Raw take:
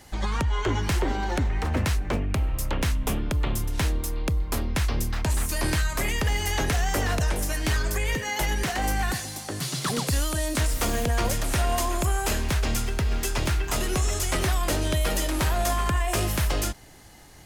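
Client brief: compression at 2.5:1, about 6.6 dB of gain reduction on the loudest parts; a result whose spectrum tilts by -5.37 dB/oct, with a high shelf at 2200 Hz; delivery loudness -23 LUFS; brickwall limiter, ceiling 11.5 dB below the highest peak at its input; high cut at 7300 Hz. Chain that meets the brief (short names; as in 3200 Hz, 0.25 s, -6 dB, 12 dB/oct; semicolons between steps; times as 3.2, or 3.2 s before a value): LPF 7300 Hz; high shelf 2200 Hz -7 dB; compressor 2.5:1, threshold -31 dBFS; gain +19 dB; limiter -14.5 dBFS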